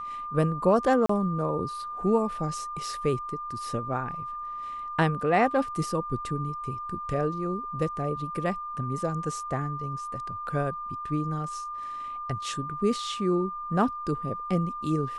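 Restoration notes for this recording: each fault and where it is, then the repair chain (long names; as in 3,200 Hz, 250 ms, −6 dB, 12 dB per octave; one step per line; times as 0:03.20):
whistle 1,200 Hz −33 dBFS
0:01.06–0:01.09: drop-out 34 ms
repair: notch filter 1,200 Hz, Q 30
repair the gap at 0:01.06, 34 ms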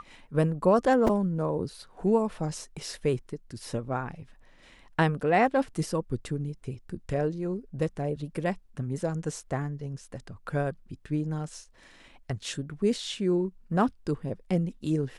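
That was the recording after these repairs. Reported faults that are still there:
none of them is left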